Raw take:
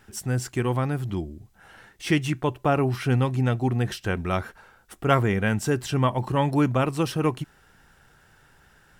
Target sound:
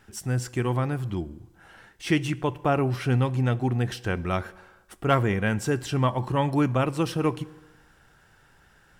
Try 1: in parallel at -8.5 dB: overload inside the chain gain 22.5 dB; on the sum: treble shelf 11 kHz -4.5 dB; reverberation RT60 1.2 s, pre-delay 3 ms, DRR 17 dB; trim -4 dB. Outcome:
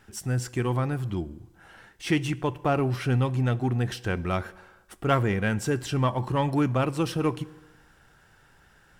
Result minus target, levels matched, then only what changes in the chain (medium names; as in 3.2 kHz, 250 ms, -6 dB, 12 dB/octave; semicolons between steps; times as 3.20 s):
overload inside the chain: distortion +21 dB
change: overload inside the chain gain 11 dB